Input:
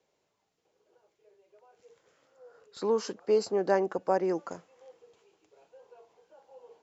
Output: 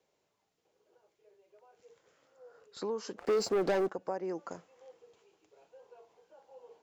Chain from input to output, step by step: compressor 2.5:1, threshold -34 dBFS, peak gain reduction 10 dB; 3.18–3.9 sample leveller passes 3; gain -1.5 dB

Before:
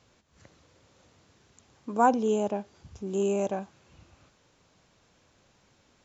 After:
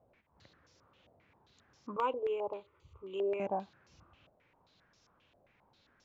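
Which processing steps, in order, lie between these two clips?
1.96–3.4 fixed phaser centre 1100 Hz, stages 8; stepped low-pass 7.5 Hz 670–5500 Hz; gain -8 dB

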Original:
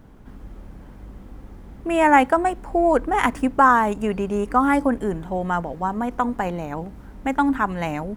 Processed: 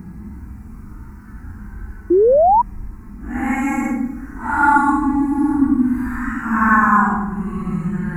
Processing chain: Paulstretch 9.4×, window 0.05 s, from 6.9; fixed phaser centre 1400 Hz, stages 4; on a send at -5 dB: reverb RT60 0.90 s, pre-delay 5 ms; on the sum: painted sound rise, 2.1–2.62, 330–1000 Hz -16 dBFS; gain +4.5 dB

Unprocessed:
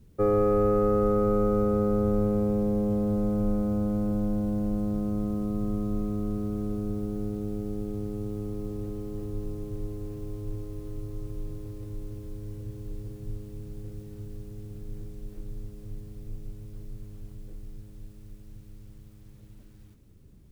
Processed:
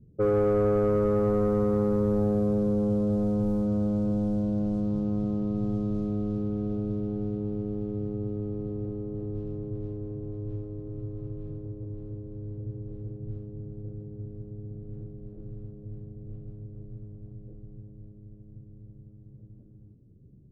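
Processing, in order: low-pass opened by the level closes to 380 Hz, open at -21 dBFS; graphic EQ 125/1000/2000 Hz +10/-11/-9 dB; overdrive pedal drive 17 dB, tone 2300 Hz, clips at -11 dBFS; gain -3 dB

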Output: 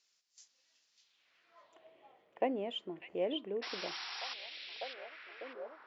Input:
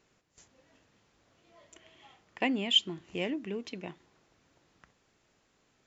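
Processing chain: band-pass sweep 5100 Hz -> 550 Hz, 0.98–1.92; painted sound noise, 3.62–4.34, 700–5700 Hz -48 dBFS; delay with a stepping band-pass 0.598 s, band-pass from 3000 Hz, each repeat -0.7 oct, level -1 dB; gain +4.5 dB

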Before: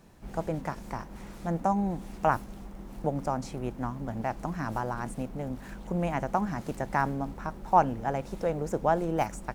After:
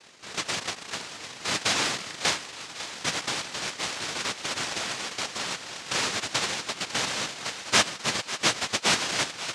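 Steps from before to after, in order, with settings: 7.62–9.09 sine-wave speech; in parallel at +0.5 dB: compressor, threshold -34 dBFS, peak gain reduction 16.5 dB; on the sum: noise vocoder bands 1; air absorption 63 m; thinning echo 0.549 s, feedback 70%, level -14 dB

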